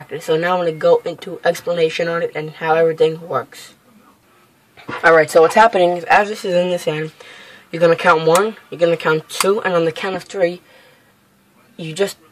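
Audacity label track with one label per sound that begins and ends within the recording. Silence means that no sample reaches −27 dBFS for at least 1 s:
4.890000	10.560000	sound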